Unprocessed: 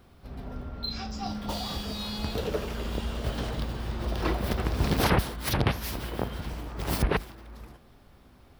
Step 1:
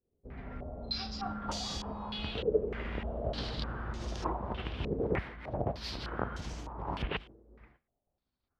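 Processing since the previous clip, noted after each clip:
downward expander −41 dBFS
speech leveller within 3 dB 0.5 s
low-pass on a step sequencer 3.3 Hz 450–6,500 Hz
level −8.5 dB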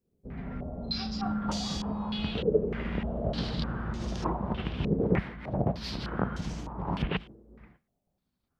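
parametric band 180 Hz +10.5 dB 0.96 octaves
level +2 dB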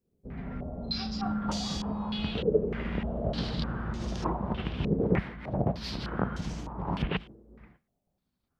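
no processing that can be heard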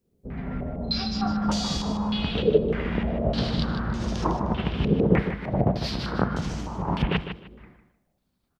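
repeating echo 153 ms, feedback 22%, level −9.5 dB
level +5.5 dB

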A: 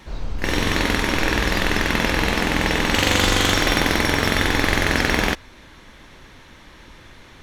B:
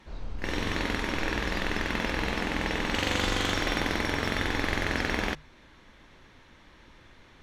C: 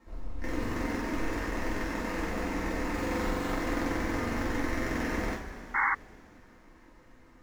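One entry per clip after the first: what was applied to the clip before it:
high-shelf EQ 8,000 Hz −10.5 dB; mains-hum notches 50/100/150 Hz; level −9 dB
running median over 15 samples; coupled-rooms reverb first 0.31 s, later 3.6 s, from −18 dB, DRR −6 dB; sound drawn into the spectrogram noise, 0:05.74–0:05.95, 790–2,200 Hz −18 dBFS; level −8.5 dB

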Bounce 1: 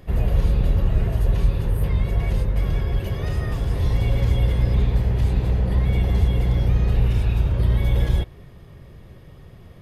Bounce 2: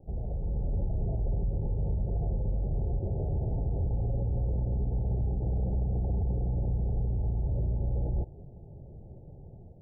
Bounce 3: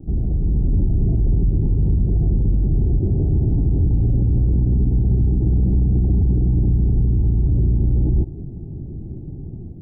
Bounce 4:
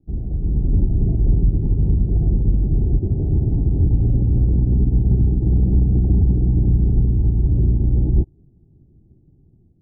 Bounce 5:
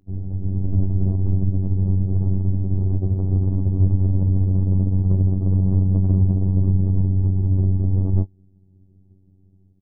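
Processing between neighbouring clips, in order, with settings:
Chebyshev low-pass filter 880 Hz, order 10; brickwall limiter −20 dBFS, peak gain reduction 11.5 dB; automatic gain control gain up to 4.5 dB; level −7.5 dB
low shelf with overshoot 410 Hz +9.5 dB, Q 3; in parallel at −1 dB: brickwall limiter −22 dBFS, peak gain reduction 10 dB
expander for the loud parts 2.5 to 1, over −30 dBFS; level +3.5 dB
stylus tracing distortion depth 0.37 ms; phases set to zero 94.7 Hz; double-tracking delay 20 ms −13 dB

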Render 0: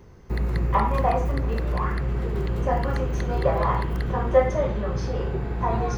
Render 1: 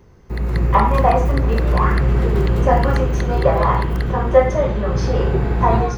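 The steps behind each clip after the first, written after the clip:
automatic gain control gain up to 11.5 dB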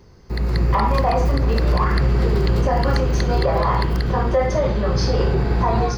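parametric band 4,700 Hz +12 dB 0.45 octaves
brickwall limiter −9.5 dBFS, peak gain reduction 8.5 dB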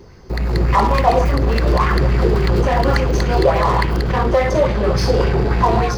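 in parallel at −7 dB: wave folding −25.5 dBFS
on the sum: auto-filter bell 3.5 Hz 330–2,500 Hz +8 dB
level +1.5 dB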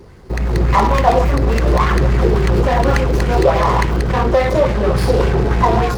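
windowed peak hold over 5 samples
level +1.5 dB

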